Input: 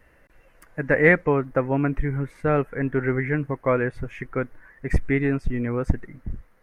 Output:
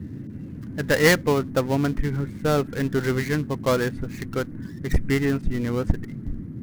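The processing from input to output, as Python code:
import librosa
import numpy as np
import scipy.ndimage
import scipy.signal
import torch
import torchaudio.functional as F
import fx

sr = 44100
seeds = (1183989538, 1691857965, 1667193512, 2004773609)

y = fx.dead_time(x, sr, dead_ms=0.13)
y = fx.dmg_noise_band(y, sr, seeds[0], low_hz=79.0, high_hz=280.0, level_db=-35.0)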